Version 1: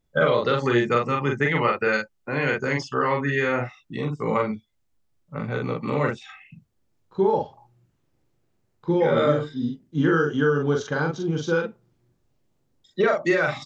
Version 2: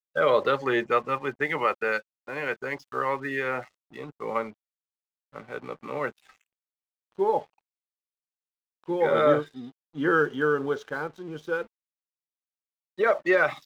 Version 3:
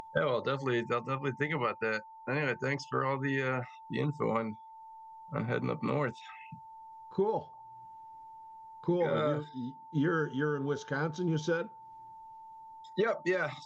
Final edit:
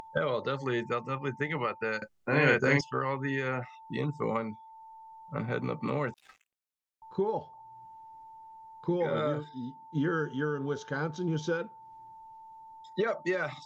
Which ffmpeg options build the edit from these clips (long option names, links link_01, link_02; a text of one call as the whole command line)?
ffmpeg -i take0.wav -i take1.wav -i take2.wav -filter_complex "[2:a]asplit=3[link_01][link_02][link_03];[link_01]atrim=end=2.022[link_04];[0:a]atrim=start=2.018:end=2.812[link_05];[link_02]atrim=start=2.808:end=6.142[link_06];[1:a]atrim=start=6.138:end=7.022[link_07];[link_03]atrim=start=7.018[link_08];[link_04][link_05]acrossfade=duration=0.004:curve1=hsin:curve2=hsin[link_09];[link_09][link_06]acrossfade=duration=0.004:curve1=hsin:curve2=hsin[link_10];[link_10][link_07]acrossfade=duration=0.004:curve1=hsin:curve2=hsin[link_11];[link_11][link_08]acrossfade=duration=0.004:curve1=hsin:curve2=hsin" out.wav